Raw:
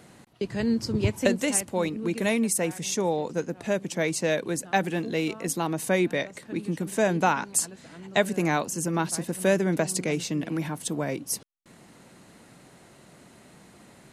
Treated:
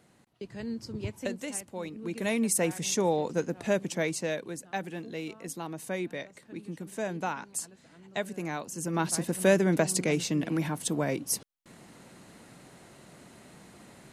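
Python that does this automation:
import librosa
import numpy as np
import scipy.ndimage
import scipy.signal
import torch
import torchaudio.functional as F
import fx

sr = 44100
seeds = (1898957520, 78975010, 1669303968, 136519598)

y = fx.gain(x, sr, db=fx.line((1.83, -11.0), (2.58, -0.5), (3.82, -0.5), (4.57, -10.0), (8.61, -10.0), (9.11, 0.0)))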